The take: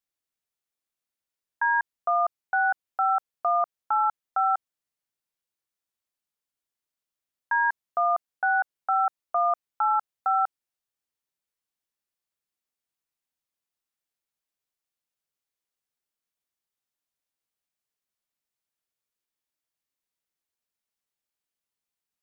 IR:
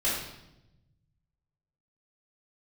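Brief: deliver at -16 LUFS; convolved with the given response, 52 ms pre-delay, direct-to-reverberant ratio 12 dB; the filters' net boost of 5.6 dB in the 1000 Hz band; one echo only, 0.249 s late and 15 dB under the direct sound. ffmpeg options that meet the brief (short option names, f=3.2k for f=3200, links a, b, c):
-filter_complex "[0:a]equalizer=f=1k:t=o:g=8,aecho=1:1:249:0.178,asplit=2[a][b];[1:a]atrim=start_sample=2205,adelay=52[c];[b][c]afir=irnorm=-1:irlink=0,volume=-22dB[d];[a][d]amix=inputs=2:normalize=0,volume=4dB"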